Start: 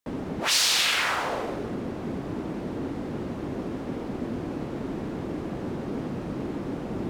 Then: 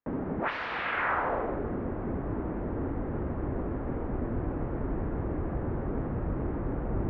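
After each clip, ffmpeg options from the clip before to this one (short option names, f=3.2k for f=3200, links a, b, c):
-af "lowpass=f=1.8k:w=0.5412,lowpass=f=1.8k:w=1.3066,asubboost=boost=7:cutoff=75"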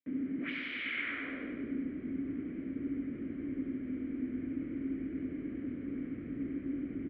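-filter_complex "[0:a]asplit=3[a][b][c];[a]bandpass=f=270:t=q:w=8,volume=0dB[d];[b]bandpass=f=2.29k:t=q:w=8,volume=-6dB[e];[c]bandpass=f=3.01k:t=q:w=8,volume=-9dB[f];[d][e][f]amix=inputs=3:normalize=0,equalizer=f=280:w=0.36:g=-6.5,aecho=1:1:97|194|291|388|485|582|679|776:0.562|0.332|0.196|0.115|0.0681|0.0402|0.0237|0.014,volume=9dB"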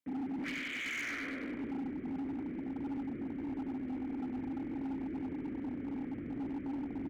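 -af "volume=36dB,asoftclip=hard,volume=-36dB,volume=1dB"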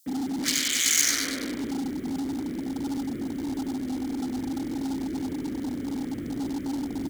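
-af "aexciter=amount=9.7:drive=7.2:freq=3.7k,volume=8dB"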